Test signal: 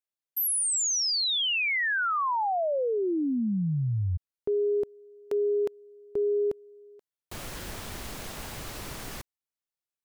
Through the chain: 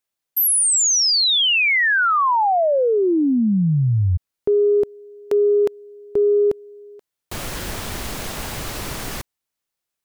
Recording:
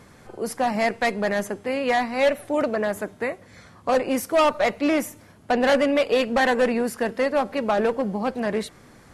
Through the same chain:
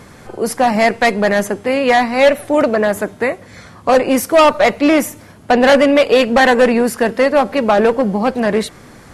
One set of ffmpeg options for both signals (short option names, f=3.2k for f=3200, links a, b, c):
-af "acontrast=80,volume=3dB"